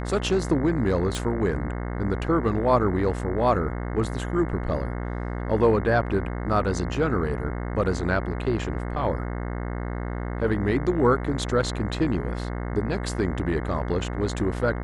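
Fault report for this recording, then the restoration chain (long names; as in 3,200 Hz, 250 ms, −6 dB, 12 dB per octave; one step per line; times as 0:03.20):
mains buzz 60 Hz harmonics 36 −30 dBFS
0:01.15: click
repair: click removal
hum removal 60 Hz, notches 36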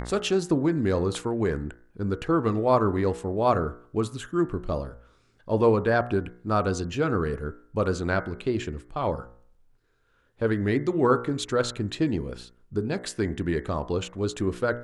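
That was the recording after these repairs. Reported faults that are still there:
none of them is left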